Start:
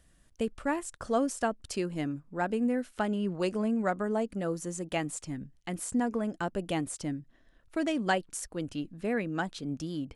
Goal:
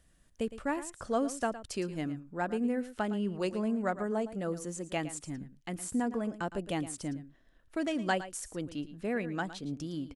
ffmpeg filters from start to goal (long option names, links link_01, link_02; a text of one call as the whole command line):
ffmpeg -i in.wav -af "aecho=1:1:112:0.2,volume=-2.5dB" out.wav